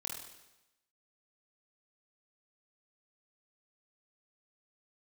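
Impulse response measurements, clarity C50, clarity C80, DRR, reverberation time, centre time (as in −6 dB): 2.5 dB, 6.5 dB, −0.5 dB, 0.95 s, 47 ms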